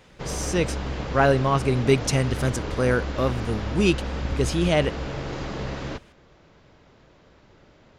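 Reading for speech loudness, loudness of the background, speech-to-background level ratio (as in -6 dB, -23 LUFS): -24.0 LUFS, -31.5 LUFS, 7.5 dB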